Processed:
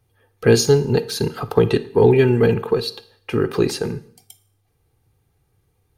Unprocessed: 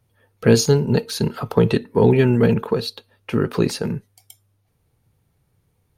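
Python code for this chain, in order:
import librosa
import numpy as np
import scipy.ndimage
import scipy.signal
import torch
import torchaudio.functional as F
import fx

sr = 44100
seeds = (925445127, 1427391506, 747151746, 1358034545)

y = x + 0.43 * np.pad(x, (int(2.5 * sr / 1000.0), 0))[:len(x)]
y = fx.rev_schroeder(y, sr, rt60_s=0.59, comb_ms=38, drr_db=15.5)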